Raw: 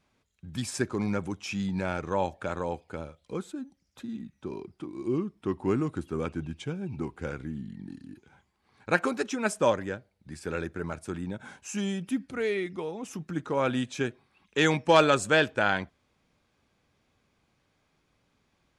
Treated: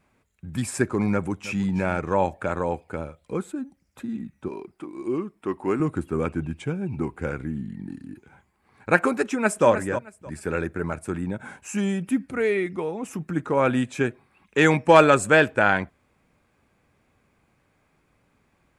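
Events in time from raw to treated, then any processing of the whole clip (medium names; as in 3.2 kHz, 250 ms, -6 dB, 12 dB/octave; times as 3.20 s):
1.12–1.67 s: echo throw 320 ms, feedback 25%, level -16 dB
4.48–5.80 s: peaking EQ 90 Hz -13.5 dB 2.5 oct
9.25–9.67 s: echo throw 310 ms, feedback 20%, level -9.5 dB
whole clip: high-order bell 4.4 kHz -8 dB 1.3 oct; trim +6 dB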